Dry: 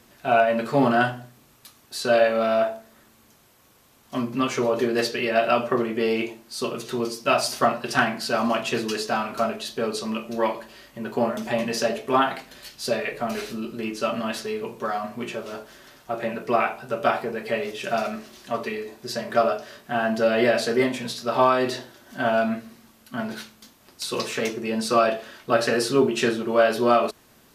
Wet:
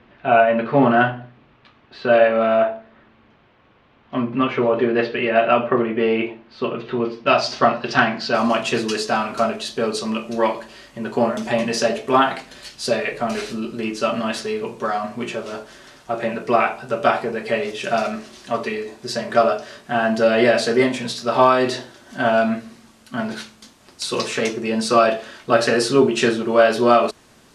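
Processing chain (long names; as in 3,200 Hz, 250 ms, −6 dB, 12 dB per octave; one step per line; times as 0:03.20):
low-pass filter 3,000 Hz 24 dB per octave, from 0:07.27 5,200 Hz, from 0:08.35 10,000 Hz
level +4.5 dB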